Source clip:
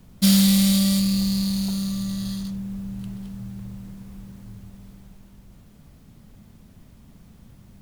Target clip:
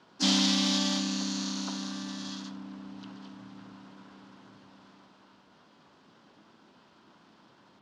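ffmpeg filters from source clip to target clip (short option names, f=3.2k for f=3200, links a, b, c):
-filter_complex "[0:a]highpass=430,equalizer=f=480:t=q:w=4:g=-5,equalizer=f=1k:t=q:w=4:g=8,equalizer=f=1.5k:t=q:w=4:g=-9,equalizer=f=2.3k:t=q:w=4:g=-4,equalizer=f=3.2k:t=q:w=4:g=3,lowpass=f=3.8k:w=0.5412,lowpass=f=3.8k:w=1.3066,asplit=3[a][b][c];[b]asetrate=58866,aresample=44100,atempo=0.749154,volume=-4dB[d];[c]asetrate=66075,aresample=44100,atempo=0.66742,volume=-4dB[e];[a][d][e]amix=inputs=3:normalize=0"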